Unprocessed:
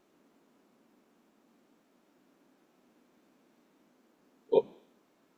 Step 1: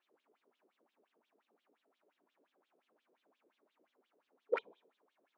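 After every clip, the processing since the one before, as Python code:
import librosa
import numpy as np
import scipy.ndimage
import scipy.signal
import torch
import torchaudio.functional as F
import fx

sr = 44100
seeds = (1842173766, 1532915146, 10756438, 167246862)

y = 10.0 ** (-20.0 / 20.0) * (np.abs((x / 10.0 ** (-20.0 / 20.0) + 3.0) % 4.0 - 2.0) - 1.0)
y = fx.wah_lfo(y, sr, hz=5.7, low_hz=410.0, high_hz=3600.0, q=5.3)
y = y * 10.0 ** (3.0 / 20.0)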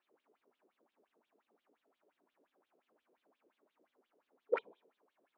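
y = fx.high_shelf(x, sr, hz=3800.0, db=-10.0)
y = y * 10.0 ** (1.0 / 20.0)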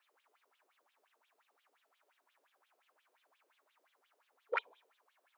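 y = scipy.signal.sosfilt(scipy.signal.butter(2, 1100.0, 'highpass', fs=sr, output='sos'), x)
y = y * 10.0 ** (8.5 / 20.0)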